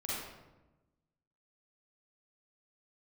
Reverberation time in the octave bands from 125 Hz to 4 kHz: 1.5, 1.4, 1.2, 1.0, 0.80, 0.65 seconds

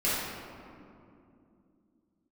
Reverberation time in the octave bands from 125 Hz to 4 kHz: can't be measured, 4.2 s, 3.0 s, 2.3 s, 1.8 s, 1.2 s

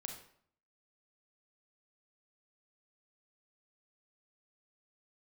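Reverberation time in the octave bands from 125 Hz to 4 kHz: 0.70, 0.70, 0.60, 0.60, 0.55, 0.45 seconds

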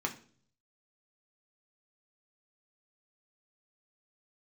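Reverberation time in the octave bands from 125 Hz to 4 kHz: 0.90, 0.65, 0.55, 0.40, 0.40, 0.45 seconds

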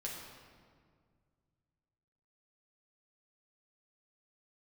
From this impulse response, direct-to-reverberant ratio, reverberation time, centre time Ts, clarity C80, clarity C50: −3.5 dB, 1.9 s, 78 ms, 3.5 dB, 1.5 dB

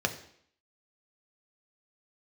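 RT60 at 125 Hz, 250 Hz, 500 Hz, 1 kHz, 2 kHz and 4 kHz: 0.55, 0.70, 0.65, 0.65, 0.65, 0.65 seconds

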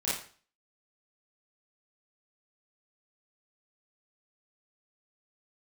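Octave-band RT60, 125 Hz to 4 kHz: 0.45, 0.45, 0.45, 0.45, 0.40, 0.40 seconds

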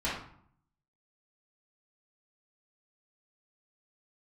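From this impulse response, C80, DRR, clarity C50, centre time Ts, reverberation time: 7.0 dB, −9.5 dB, 2.0 dB, 46 ms, 0.60 s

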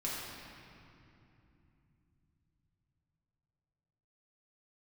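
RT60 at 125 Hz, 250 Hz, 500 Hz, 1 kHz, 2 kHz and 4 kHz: 5.7, 4.5, 3.1, 2.7, 2.5, 1.9 seconds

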